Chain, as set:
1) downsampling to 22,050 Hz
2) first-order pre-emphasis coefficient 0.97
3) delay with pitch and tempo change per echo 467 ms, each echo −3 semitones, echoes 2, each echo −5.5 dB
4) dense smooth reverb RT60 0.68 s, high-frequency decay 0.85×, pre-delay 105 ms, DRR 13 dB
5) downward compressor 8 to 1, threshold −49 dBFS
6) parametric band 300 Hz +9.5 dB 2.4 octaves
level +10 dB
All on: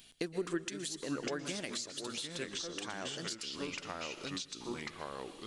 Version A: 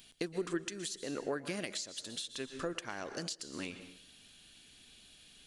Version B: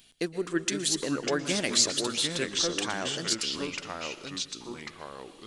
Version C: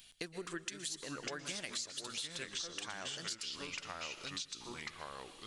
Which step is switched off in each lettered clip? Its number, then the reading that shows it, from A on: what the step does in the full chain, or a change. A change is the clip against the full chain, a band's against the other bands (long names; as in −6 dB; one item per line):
3, change in momentary loudness spread +15 LU
5, change in crest factor +3.0 dB
6, 250 Hz band −7.0 dB